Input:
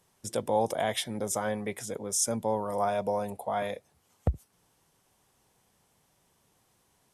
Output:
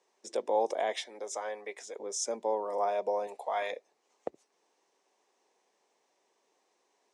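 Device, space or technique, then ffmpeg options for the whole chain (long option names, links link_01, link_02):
phone speaker on a table: -filter_complex "[0:a]highpass=frequency=330:width=0.5412,highpass=frequency=330:width=1.3066,equalizer=frequency=400:width_type=q:width=4:gain=3,equalizer=frequency=1400:width_type=q:width=4:gain=-7,equalizer=frequency=3200:width_type=q:width=4:gain=-6,equalizer=frequency=4700:width_type=q:width=4:gain=-3,lowpass=frequency=6600:width=0.5412,lowpass=frequency=6600:width=1.3066,asettb=1/sr,asplit=3[link_01][link_02][link_03];[link_01]atrim=end=1.014[link_04];[link_02]atrim=start=1.01:end=2,asetpts=PTS-STARTPTS,afade=type=in:duration=0.004:curve=qsin,afade=type=out:start_time=0.986:duration=0.004:curve=qsin,highpass=frequency=720:poles=1[link_05];[link_03]atrim=start=1.996[link_06];[link_04][link_05]acrossfade=duration=0.004:curve1=hsin:curve2=qsin[link_07];[link_07][link_06]acrossfade=duration=0.004:curve1=qsin:curve2=hsin,asettb=1/sr,asplit=3[link_08][link_09][link_10];[link_08]atrim=end=3.274[link_11];[link_09]atrim=start=3.27:end=3.72,asetpts=PTS-STARTPTS,afade=type=in:duration=0.004:curve=qsin,afade=type=out:start_time=0.446:duration=0.004:curve=qsin,tiltshelf=frequency=710:gain=-7.5[link_12];[link_10]atrim=start=3.716[link_13];[link_11][link_12]acrossfade=duration=0.004:curve1=hsin:curve2=qsin[link_14];[link_14][link_13]acrossfade=duration=0.004:curve1=qsin:curve2=hsin,volume=-1.5dB"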